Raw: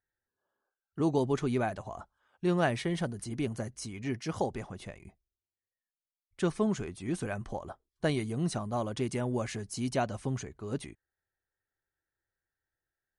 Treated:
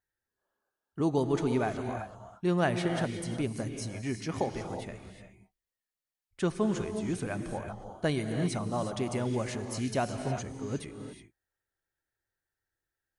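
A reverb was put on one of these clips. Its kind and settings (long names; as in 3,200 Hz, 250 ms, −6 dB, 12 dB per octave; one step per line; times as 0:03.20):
reverb whose tail is shaped and stops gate 390 ms rising, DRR 6 dB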